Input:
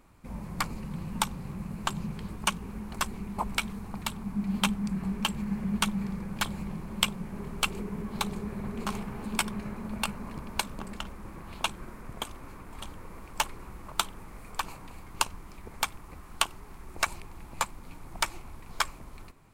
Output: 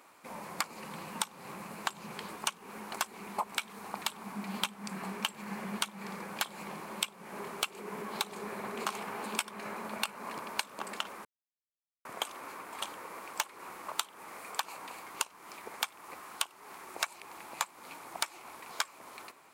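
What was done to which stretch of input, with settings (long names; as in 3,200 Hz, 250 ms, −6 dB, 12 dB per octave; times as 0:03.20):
0:11.25–0:12.05: silence
whole clip: high-pass filter 520 Hz 12 dB per octave; downward compressor 16 to 1, threshold −36 dBFS; level +6.5 dB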